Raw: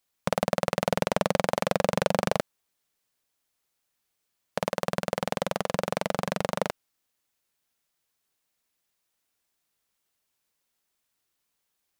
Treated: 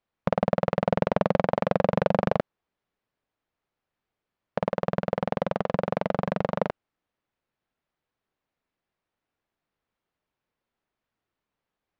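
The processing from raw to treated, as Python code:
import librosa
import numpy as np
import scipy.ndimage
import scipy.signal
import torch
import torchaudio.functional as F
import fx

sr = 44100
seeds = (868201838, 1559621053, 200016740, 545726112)

y = fx.spacing_loss(x, sr, db_at_10k=37)
y = y * librosa.db_to_amplitude(4.5)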